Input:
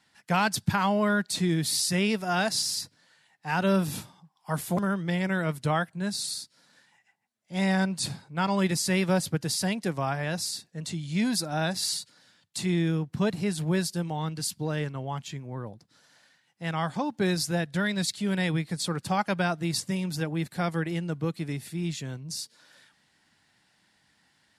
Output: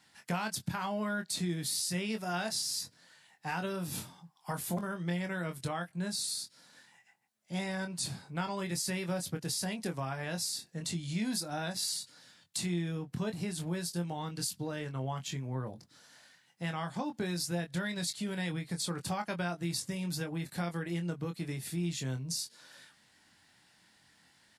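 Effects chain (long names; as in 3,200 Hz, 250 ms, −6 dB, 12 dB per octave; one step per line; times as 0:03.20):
high-shelf EQ 6,100 Hz +4.5 dB
downward compressor 4 to 1, threshold −34 dBFS, peak gain reduction 13 dB
double-tracking delay 23 ms −6.5 dB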